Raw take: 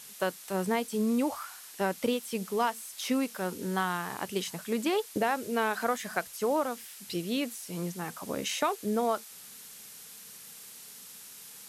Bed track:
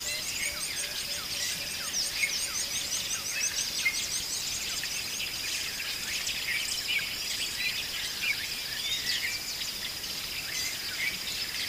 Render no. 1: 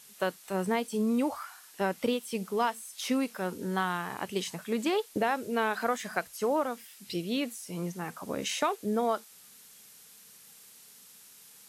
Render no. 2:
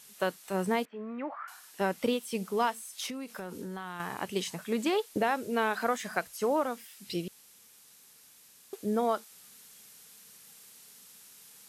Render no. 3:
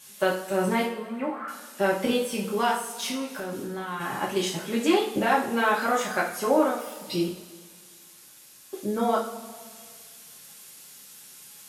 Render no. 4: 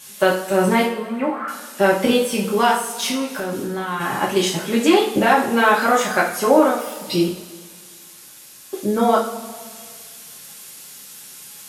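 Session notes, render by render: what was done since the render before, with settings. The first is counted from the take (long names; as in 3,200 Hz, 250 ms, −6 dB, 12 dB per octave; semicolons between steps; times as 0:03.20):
noise reduction from a noise print 6 dB
0:00.85–0:01.48: loudspeaker in its box 460–2,100 Hz, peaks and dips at 480 Hz −9 dB, 890 Hz −5 dB, 1,800 Hz +5 dB; 0:03.06–0:04.00: downward compressor 10 to 1, threshold −35 dBFS; 0:07.28–0:08.73: fill with room tone
coupled-rooms reverb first 0.41 s, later 1.9 s, from −16 dB, DRR −5.5 dB
level +8 dB; brickwall limiter −3 dBFS, peak gain reduction 2.5 dB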